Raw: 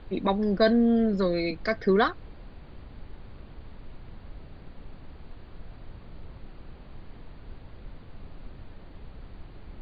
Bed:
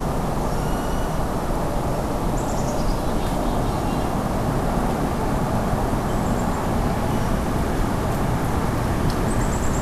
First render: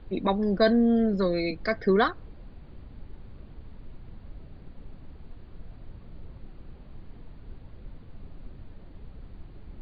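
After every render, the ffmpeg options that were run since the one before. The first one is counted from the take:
ffmpeg -i in.wav -af "afftdn=noise_reduction=6:noise_floor=-47" out.wav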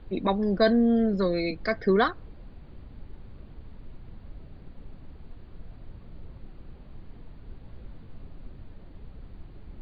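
ffmpeg -i in.wav -filter_complex "[0:a]asettb=1/sr,asplit=3[link_01][link_02][link_03];[link_01]atrim=end=7.614[link_04];[link_02]atrim=start=7.61:end=8.23,asetpts=PTS-STARTPTS,afade=type=in:duration=0.004:curve=qsin,afade=type=out:start_time=0.616:duration=0.004:curve=qsin,asplit=2[link_05][link_06];[link_06]adelay=18,volume=-6dB[link_07];[link_05][link_07]amix=inputs=2:normalize=0,atrim=end_sample=27342[link_08];[link_03]atrim=start=8.226[link_09];[link_04][link_08]acrossfade=duration=0.004:curve1=hsin:curve2=qsin[link_10];[link_10][link_09]acrossfade=duration=0.004:curve1=qsin:curve2=hsin" out.wav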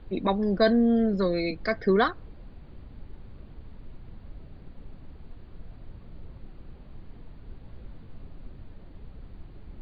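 ffmpeg -i in.wav -af anull out.wav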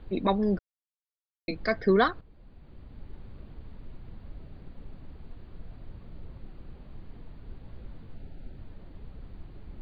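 ffmpeg -i in.wav -filter_complex "[0:a]asettb=1/sr,asplit=3[link_01][link_02][link_03];[link_01]atrim=end=8.154[link_04];[link_02]atrim=start=8.15:end=8.57,asetpts=PTS-STARTPTS,afade=type=in:duration=0.004:curve=qsin,afade=type=out:start_time=0.416:duration=0.004:curve=qsin,asuperstop=centerf=1100:order=12:qfactor=3.4[link_05];[link_03]atrim=start=8.566[link_06];[link_04][link_05]acrossfade=duration=0.004:curve1=hsin:curve2=qsin[link_07];[link_07][link_06]acrossfade=duration=0.004:curve1=qsin:curve2=hsin,asplit=4[link_08][link_09][link_10][link_11];[link_08]atrim=end=0.59,asetpts=PTS-STARTPTS,afade=type=out:start_time=0.586:duration=0.004:curve=hsin[link_12];[link_09]atrim=start=0.59:end=1.48,asetpts=PTS-STARTPTS,volume=0[link_13];[link_10]atrim=start=1.48:end=2.21,asetpts=PTS-STARTPTS,afade=type=in:duration=0.004:curve=hsin,afade=type=out:start_time=0.726:duration=0.004:curve=hsin:silence=0.237137[link_14];[link_11]atrim=start=2.21,asetpts=PTS-STARTPTS,afade=type=in:duration=0.93:silence=0.237137[link_15];[link_12][link_13][link_14][link_15]concat=n=4:v=0:a=1" out.wav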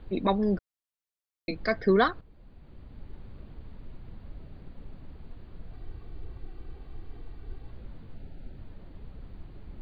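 ffmpeg -i in.wav -filter_complex "[0:a]asettb=1/sr,asplit=3[link_01][link_02][link_03];[link_01]atrim=end=5.734[link_04];[link_02]atrim=start=5.73:end=7.71,asetpts=PTS-STARTPTS,afade=type=in:duration=0.004:curve=qsin,afade=type=out:start_time=1.976:duration=0.004:curve=qsin,aecho=1:1:2.6:0.56,atrim=end_sample=87318[link_05];[link_03]atrim=start=7.706[link_06];[link_04][link_05]acrossfade=duration=0.004:curve1=hsin:curve2=qsin[link_07];[link_07][link_06]acrossfade=duration=0.004:curve1=qsin:curve2=hsin" out.wav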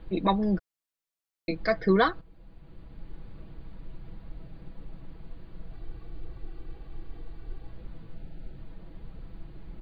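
ffmpeg -i in.wav -af "aecho=1:1:6.1:0.51" out.wav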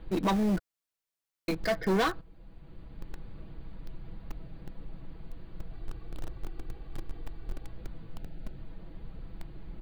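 ffmpeg -i in.wav -filter_complex "[0:a]asplit=2[link_01][link_02];[link_02]acrusher=bits=4:mix=0:aa=0.000001,volume=-9dB[link_03];[link_01][link_03]amix=inputs=2:normalize=0,asoftclip=type=tanh:threshold=-22.5dB" out.wav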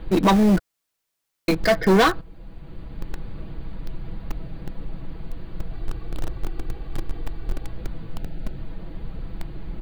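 ffmpeg -i in.wav -af "volume=10.5dB" out.wav

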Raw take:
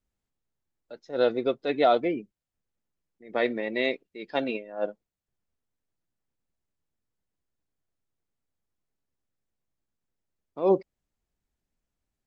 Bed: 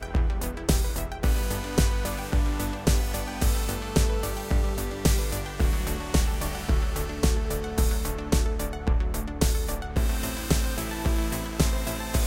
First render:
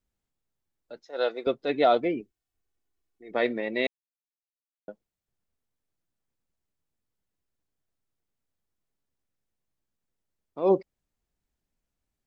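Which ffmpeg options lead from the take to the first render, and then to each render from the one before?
ffmpeg -i in.wav -filter_complex "[0:a]asettb=1/sr,asplit=3[link_01][link_02][link_03];[link_01]atrim=end=1.034[link_04];[link_02]atrim=start=1.03:end=1.47,asetpts=PTS-STARTPTS,afade=type=in:duration=0.004:curve=qsin,afade=type=out:start_time=0.436:duration=0.004:curve=qsin,highpass=560[link_05];[link_03]atrim=start=1.466[link_06];[link_04][link_05]acrossfade=duration=0.004:curve1=hsin:curve2=qsin[link_07];[link_07][link_06]acrossfade=duration=0.004:curve1=qsin:curve2=hsin,asettb=1/sr,asplit=3[link_08][link_09][link_10];[link_08]atrim=end=2.204[link_11];[link_09]atrim=start=2.2:end=3.31,asetpts=PTS-STARTPTS,afade=type=in:duration=0.004:curve=qsin,afade=type=out:start_time=1.106:duration=0.004:curve=qsin,aecho=1:1:2.7:0.65,atrim=end_sample=48951[link_12];[link_10]atrim=start=3.306[link_13];[link_11][link_12]acrossfade=duration=0.004:curve1=hsin:curve2=qsin[link_14];[link_14][link_13]acrossfade=duration=0.004:curve1=qsin:curve2=hsin,asplit=3[link_15][link_16][link_17];[link_15]atrim=end=3.87,asetpts=PTS-STARTPTS,afade=type=out:start_time=3.866:duration=0.004:curve=hsin[link_18];[link_16]atrim=start=3.87:end=4.88,asetpts=PTS-STARTPTS,volume=0[link_19];[link_17]atrim=start=4.88,asetpts=PTS-STARTPTS,afade=type=in:duration=0.004:curve=hsin[link_20];[link_18][link_19][link_20]concat=n=3:v=0:a=1" out.wav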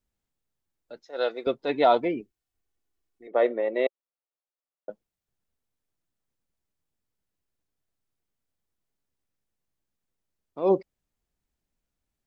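ffmpeg -i in.wav -filter_complex "[0:a]asettb=1/sr,asplit=3[link_01][link_02][link_03];[link_01]atrim=end=1.594[link_04];[link_02]atrim=start=1.59:end=2.09,asetpts=PTS-STARTPTS,afade=type=in:duration=0.004:curve=qsin,afade=type=out:start_time=0.496:duration=0.004:curve=qsin,equalizer=frequency=930:width=5.6:gain=13[link_05];[link_03]atrim=start=2.086[link_06];[link_04][link_05]acrossfade=duration=0.004:curve1=hsin:curve2=qsin[link_07];[link_07][link_06]acrossfade=duration=0.004:curve1=qsin:curve2=hsin,asettb=1/sr,asplit=3[link_08][link_09][link_10];[link_08]atrim=end=3.274[link_11];[link_09]atrim=start=3.27:end=4.9,asetpts=PTS-STARTPTS,afade=type=in:duration=0.004:curve=qsin,afade=type=out:start_time=1.626:duration=0.004:curve=qsin,highpass=350,equalizer=frequency=380:width_type=q:width=4:gain=4,equalizer=frequency=550:width_type=q:width=4:gain=8,equalizer=frequency=770:width_type=q:width=4:gain=3,equalizer=frequency=1200:width_type=q:width=4:gain=4,equalizer=frequency=1700:width_type=q:width=4:gain=-5,equalizer=frequency=2400:width_type=q:width=4:gain=-9,lowpass=frequency=3000:width=0.5412,lowpass=frequency=3000:width=1.3066[link_12];[link_10]atrim=start=4.896[link_13];[link_11][link_12]acrossfade=duration=0.004:curve1=hsin:curve2=qsin[link_14];[link_14][link_13]acrossfade=duration=0.004:curve1=qsin:curve2=hsin" out.wav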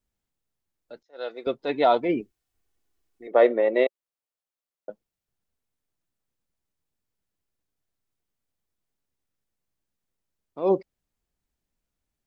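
ffmpeg -i in.wav -filter_complex "[0:a]asplit=3[link_01][link_02][link_03];[link_01]afade=type=out:start_time=2.08:duration=0.02[link_04];[link_02]acontrast=33,afade=type=in:start_time=2.08:duration=0.02,afade=type=out:start_time=3.83:duration=0.02[link_05];[link_03]afade=type=in:start_time=3.83:duration=0.02[link_06];[link_04][link_05][link_06]amix=inputs=3:normalize=0,asplit=2[link_07][link_08];[link_07]atrim=end=1.03,asetpts=PTS-STARTPTS,afade=type=out:start_time=1.026:duration=0.004:curve=hsin:silence=0.0707946[link_09];[link_08]atrim=start=1.03,asetpts=PTS-STARTPTS,afade=type=in:duration=0.51:silence=0.0707946[link_10];[link_09][link_10]concat=n=2:v=0:a=1" out.wav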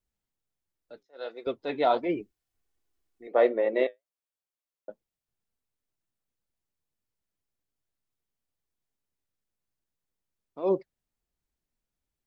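ffmpeg -i in.wav -af "flanger=delay=1.9:depth=7.1:regen=-67:speed=1.4:shape=sinusoidal" out.wav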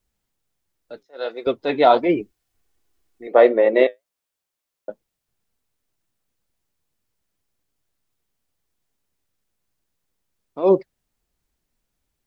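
ffmpeg -i in.wav -af "volume=10dB,alimiter=limit=-2dB:level=0:latency=1" out.wav

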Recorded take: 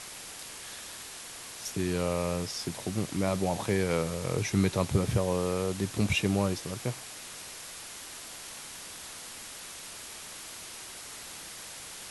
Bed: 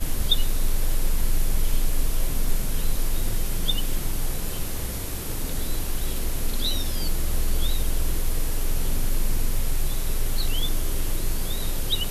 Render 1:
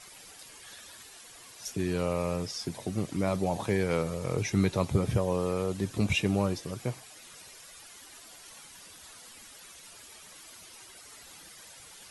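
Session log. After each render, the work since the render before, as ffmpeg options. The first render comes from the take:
ffmpeg -i in.wav -af "afftdn=noise_reduction=11:noise_floor=-44" out.wav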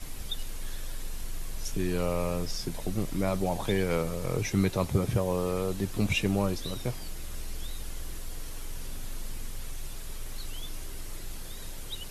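ffmpeg -i in.wav -i bed.wav -filter_complex "[1:a]volume=-14dB[link_01];[0:a][link_01]amix=inputs=2:normalize=0" out.wav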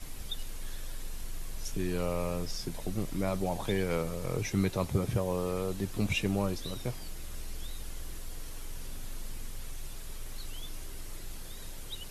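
ffmpeg -i in.wav -af "volume=-3dB" out.wav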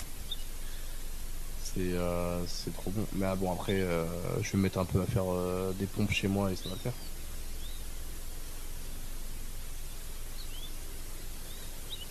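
ffmpeg -i in.wav -af "acompressor=mode=upward:threshold=-35dB:ratio=2.5" out.wav

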